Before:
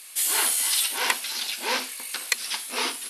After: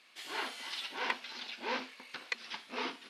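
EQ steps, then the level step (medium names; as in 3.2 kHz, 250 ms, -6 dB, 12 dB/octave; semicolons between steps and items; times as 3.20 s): distance through air 230 m; peaking EQ 140 Hz +7.5 dB 1.7 oct; -7.5 dB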